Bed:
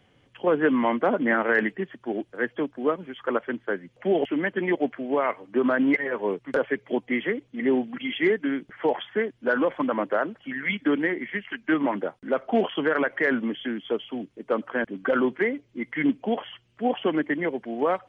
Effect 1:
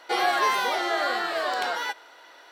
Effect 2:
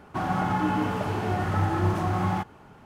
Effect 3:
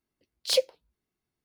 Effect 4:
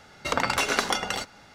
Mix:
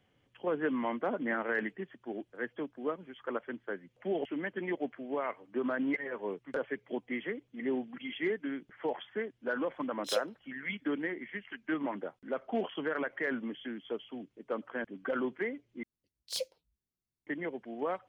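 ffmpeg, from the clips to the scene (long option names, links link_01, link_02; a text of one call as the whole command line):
ffmpeg -i bed.wav -i cue0.wav -i cue1.wav -i cue2.wav -filter_complex "[3:a]asplit=2[link_01][link_02];[0:a]volume=-10.5dB[link_03];[link_01]asuperstop=centerf=4500:order=20:qfactor=7.9[link_04];[link_02]bass=frequency=250:gain=9,treble=frequency=4000:gain=7[link_05];[link_03]asplit=2[link_06][link_07];[link_06]atrim=end=15.834[link_08];[link_05]atrim=end=1.44,asetpts=PTS-STARTPTS,volume=-14.5dB[link_09];[link_07]atrim=start=17.266[link_10];[link_04]atrim=end=1.44,asetpts=PTS-STARTPTS,volume=-9dB,afade=type=in:duration=0.004:curve=hsin,afade=type=out:start_time=1.436:duration=0.004:curve=hsin,adelay=9590[link_11];[link_08][link_09]acrossfade=duration=0.004:curve1=hsin:curve2=hsin[link_12];[link_12][link_10]acrossfade=duration=0.004:curve1=hsin:curve2=hsin[link_13];[link_13][link_11]amix=inputs=2:normalize=0" out.wav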